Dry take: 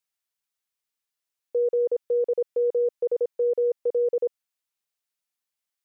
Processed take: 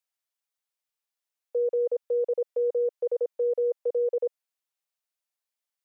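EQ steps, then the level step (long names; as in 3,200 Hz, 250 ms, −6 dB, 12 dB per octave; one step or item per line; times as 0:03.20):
four-pole ladder high-pass 420 Hz, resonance 30%
+3.5 dB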